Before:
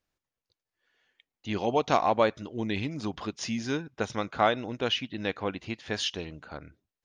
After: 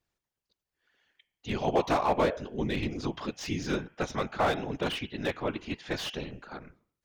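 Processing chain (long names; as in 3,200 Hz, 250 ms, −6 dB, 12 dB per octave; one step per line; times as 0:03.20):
hum removal 183.5 Hz, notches 18
random phases in short frames
slew-rate limiting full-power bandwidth 71 Hz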